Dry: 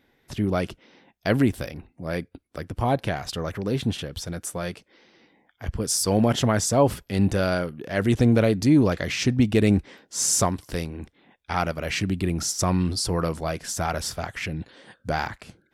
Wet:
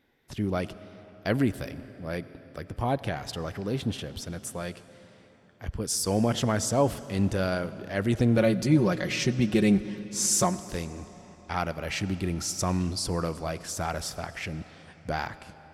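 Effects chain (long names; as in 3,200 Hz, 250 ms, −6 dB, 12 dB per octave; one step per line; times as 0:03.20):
0:08.37–0:10.58: comb filter 5.5 ms, depth 77%
on a send: convolution reverb RT60 4.2 s, pre-delay 50 ms, DRR 15 dB
on the sum: level −4.5 dB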